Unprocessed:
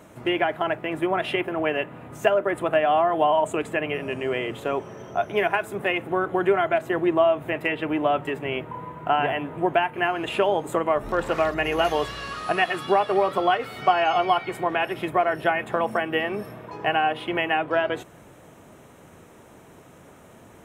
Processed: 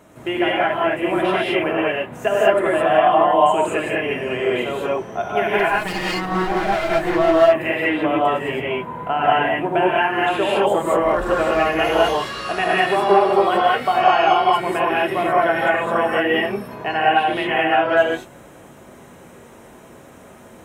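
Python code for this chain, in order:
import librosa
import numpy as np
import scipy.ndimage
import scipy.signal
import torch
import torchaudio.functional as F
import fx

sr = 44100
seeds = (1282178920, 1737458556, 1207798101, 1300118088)

y = fx.lower_of_two(x, sr, delay_ms=6.3, at=(5.59, 7.31))
y = fx.highpass(y, sr, hz=94.0, slope=12, at=(11.97, 12.37))
y = fx.rev_gated(y, sr, seeds[0], gate_ms=240, shape='rising', drr_db=-6.5)
y = y * 10.0 ** (-1.5 / 20.0)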